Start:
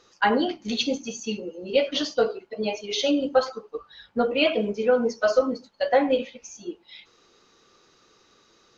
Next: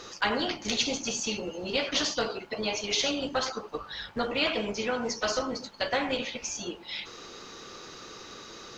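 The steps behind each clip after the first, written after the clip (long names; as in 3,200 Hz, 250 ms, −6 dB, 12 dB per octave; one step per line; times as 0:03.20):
in parallel at −1 dB: downward compressor, threshold −30 dBFS, peak gain reduction 15.5 dB
on the sum: every bin compressed towards the loudest bin 2 to 1
level −6 dB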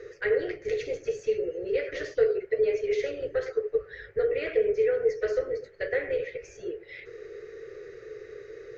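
drawn EQ curve 130 Hz 0 dB, 240 Hz −26 dB, 430 Hz +14 dB, 920 Hz −26 dB, 1,900 Hz +3 dB, 3,100 Hz −20 dB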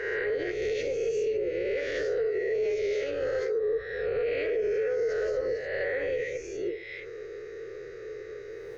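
peak hold with a rise ahead of every peak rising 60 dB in 1.10 s
brickwall limiter −22 dBFS, peak gain reduction 10 dB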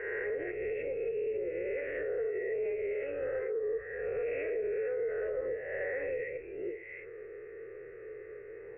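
Chebyshev low-pass with heavy ripple 2,700 Hz, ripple 3 dB
level −4.5 dB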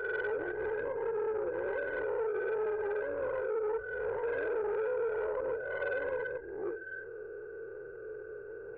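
hearing-aid frequency compression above 1,400 Hz 4 to 1
saturating transformer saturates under 640 Hz
level +2 dB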